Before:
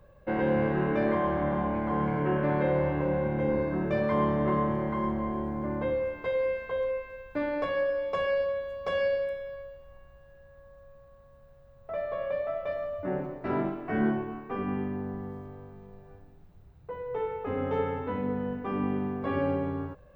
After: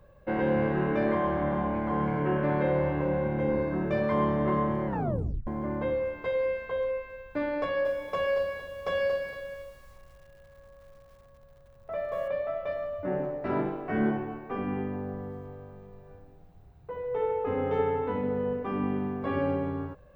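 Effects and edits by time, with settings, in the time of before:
4.86 tape stop 0.61 s
7.62–12.28 lo-fi delay 0.23 s, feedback 35%, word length 9-bit, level -8 dB
12.97–18.63 narrowing echo 75 ms, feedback 73%, band-pass 640 Hz, level -6.5 dB

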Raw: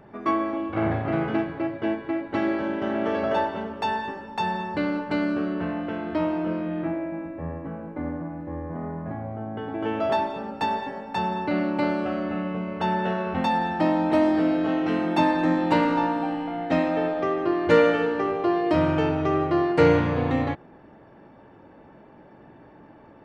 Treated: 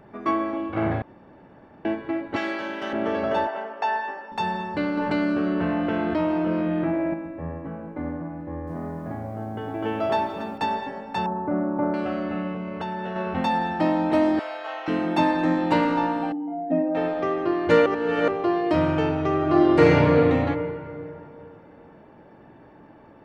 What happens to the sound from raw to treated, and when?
1.02–1.85 room tone
2.36–2.93 tilt +4 dB/oct
3.47–4.32 speaker cabinet 490–5900 Hz, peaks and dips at 710 Hz +8 dB, 1700 Hz +4 dB, 3800 Hz -9 dB
4.97–7.14 fast leveller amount 70%
8.39–10.58 lo-fi delay 0.283 s, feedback 35%, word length 9-bit, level -11 dB
11.26–11.94 LPF 1300 Hz 24 dB/oct
12.53–13.16 compressor 4:1, threshold -27 dBFS
14.39–14.88 HPF 670 Hz 24 dB/oct
16.32–16.95 spectral contrast raised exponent 2.1
17.86–18.28 reverse
19.37–19.91 reverb throw, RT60 2.9 s, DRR -3.5 dB

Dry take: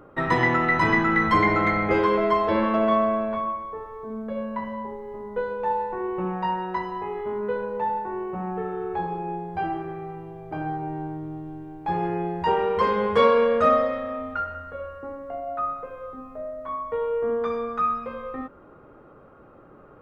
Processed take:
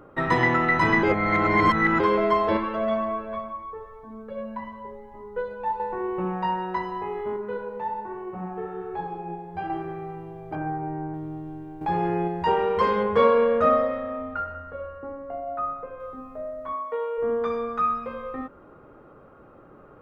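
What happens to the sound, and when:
1.03–2 reverse
2.57–5.8 cascading flanger rising 1.9 Hz
7.36–9.7 flange 1.2 Hz, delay 6.6 ms, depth 7.4 ms, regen +54%
10.55–11.14 steep low-pass 2400 Hz
11.81–12.28 fast leveller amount 50%
13.03–16 high shelf 3300 Hz -11.5 dB
16.72–17.17 HPF 240 Hz -> 570 Hz

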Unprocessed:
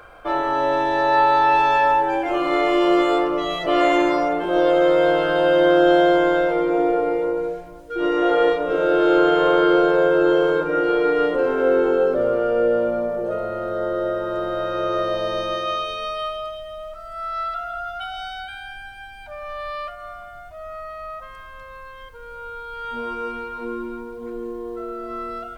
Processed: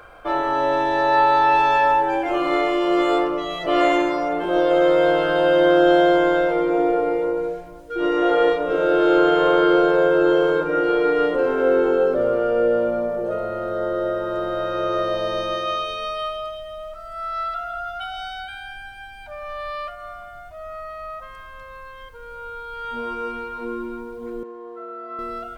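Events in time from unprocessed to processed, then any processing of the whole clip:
2.49–4.71 tremolo 1.5 Hz, depth 31%
24.43–25.19 band-pass 1100 Hz, Q 0.82

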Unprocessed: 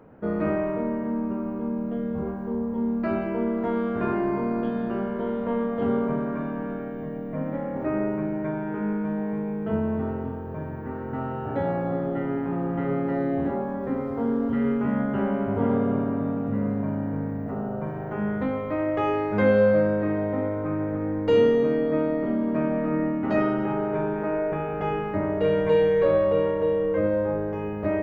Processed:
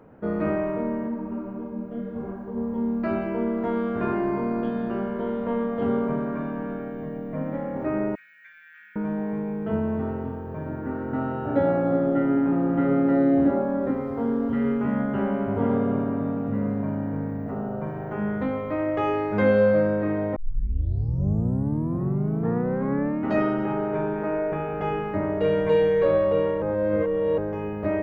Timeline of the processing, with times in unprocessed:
1.06–2.56 detuned doubles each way 28 cents -> 38 cents
8.15–8.96 elliptic high-pass 1700 Hz, stop band 50 dB
10.66–13.91 small resonant body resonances 290/580/1400/3800 Hz, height 9 dB
20.36 tape start 2.88 s
26.62–27.38 reverse

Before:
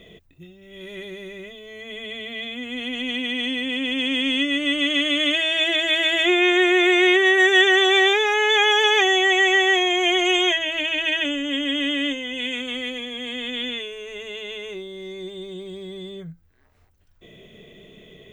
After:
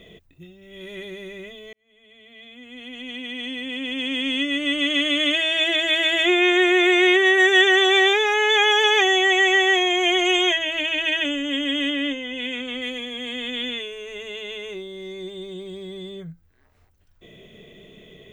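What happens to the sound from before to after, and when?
1.73–5.03 fade in
11.9–12.82 LPF 3600 Hz 6 dB/oct

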